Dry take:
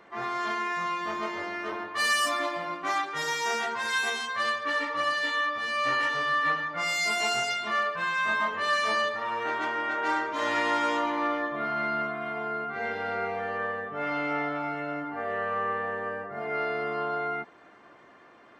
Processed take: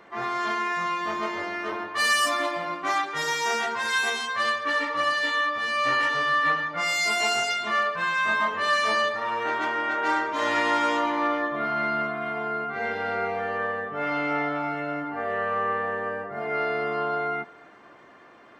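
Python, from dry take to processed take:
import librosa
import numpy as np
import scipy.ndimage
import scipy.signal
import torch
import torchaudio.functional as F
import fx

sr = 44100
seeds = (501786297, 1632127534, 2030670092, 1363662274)

y = fx.highpass(x, sr, hz=170.0, slope=12, at=(6.8, 7.59))
y = y + 10.0 ** (-24.0 / 20.0) * np.pad(y, (int(219 * sr / 1000.0), 0))[:len(y)]
y = y * 10.0 ** (3.0 / 20.0)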